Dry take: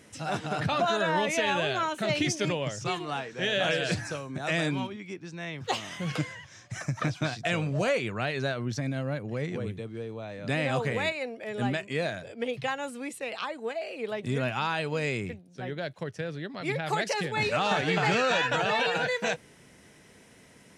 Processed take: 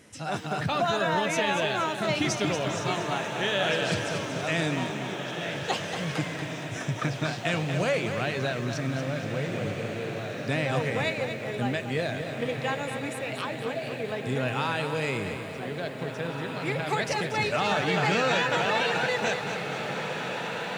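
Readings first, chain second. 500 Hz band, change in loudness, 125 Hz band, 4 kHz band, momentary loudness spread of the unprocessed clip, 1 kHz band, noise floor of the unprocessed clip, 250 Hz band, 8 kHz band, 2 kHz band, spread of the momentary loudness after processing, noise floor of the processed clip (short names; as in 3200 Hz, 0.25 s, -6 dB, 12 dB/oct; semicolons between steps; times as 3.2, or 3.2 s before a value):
+1.5 dB, +1.5 dB, +1.5 dB, +1.5 dB, 11 LU, +1.5 dB, -55 dBFS, +1.5 dB, +1.5 dB, +1.5 dB, 8 LU, -36 dBFS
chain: on a send: diffused feedback echo 1.922 s, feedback 45%, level -7.5 dB; on the sum: lo-fi delay 0.234 s, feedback 55%, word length 9-bit, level -8 dB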